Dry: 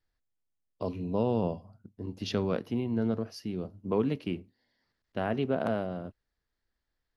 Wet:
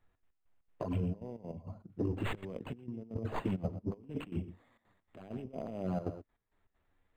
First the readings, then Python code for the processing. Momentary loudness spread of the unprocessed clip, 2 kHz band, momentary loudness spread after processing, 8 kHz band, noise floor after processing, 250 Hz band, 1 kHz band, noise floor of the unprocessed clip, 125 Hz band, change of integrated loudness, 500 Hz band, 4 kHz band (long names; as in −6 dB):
12 LU, −6.0 dB, 11 LU, can't be measured, −81 dBFS, −7.0 dB, −8.0 dB, −84 dBFS, −2.5 dB, −7.0 dB, −10.0 dB, −10.5 dB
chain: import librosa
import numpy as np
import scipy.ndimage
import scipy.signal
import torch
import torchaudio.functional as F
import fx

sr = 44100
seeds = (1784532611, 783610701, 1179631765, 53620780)

y = fx.tracing_dist(x, sr, depth_ms=0.21)
y = fx.peak_eq(y, sr, hz=1500.0, db=-6.0, octaves=0.28)
y = fx.env_flanger(y, sr, rest_ms=10.8, full_db=-25.5)
y = fx.over_compress(y, sr, threshold_db=-42.0, ratio=-1.0)
y = y + 10.0 ** (-14.0 / 20.0) * np.pad(y, (int(120 * sr / 1000.0), 0))[:len(y)]
y = fx.step_gate(y, sr, bpm=198, pattern='xx.x..xx.xxxxxx.', floor_db=-12.0, edge_ms=4.5)
y = np.interp(np.arange(len(y)), np.arange(len(y))[::8], y[::8])
y = y * librosa.db_to_amplitude(4.0)